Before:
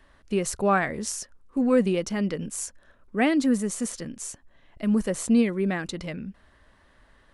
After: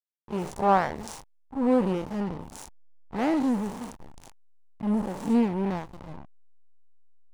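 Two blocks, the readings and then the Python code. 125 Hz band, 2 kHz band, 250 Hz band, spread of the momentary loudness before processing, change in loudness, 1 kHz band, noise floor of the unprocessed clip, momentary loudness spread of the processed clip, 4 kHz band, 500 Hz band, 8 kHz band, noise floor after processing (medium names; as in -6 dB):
-2.0 dB, -7.5 dB, -2.5 dB, 13 LU, -1.0 dB, +3.0 dB, -60 dBFS, 19 LU, -8.0 dB, -3.0 dB, -15.0 dB, -60 dBFS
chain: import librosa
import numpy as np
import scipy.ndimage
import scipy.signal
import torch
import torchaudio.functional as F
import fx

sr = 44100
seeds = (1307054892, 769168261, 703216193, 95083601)

y = fx.spec_blur(x, sr, span_ms=124.0)
y = fx.backlash(y, sr, play_db=-26.5)
y = fx.peak_eq(y, sr, hz=880.0, db=12.5, octaves=0.61)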